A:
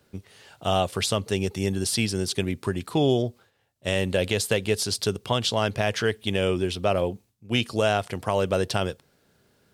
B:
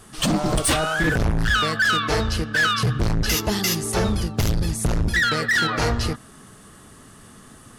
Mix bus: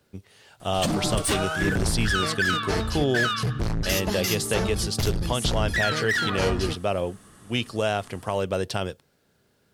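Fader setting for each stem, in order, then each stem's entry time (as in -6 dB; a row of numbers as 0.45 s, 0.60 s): -2.5 dB, -5.0 dB; 0.00 s, 0.60 s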